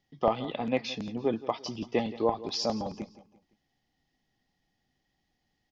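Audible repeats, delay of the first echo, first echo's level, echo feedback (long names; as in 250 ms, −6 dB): 3, 171 ms, −17.0 dB, 40%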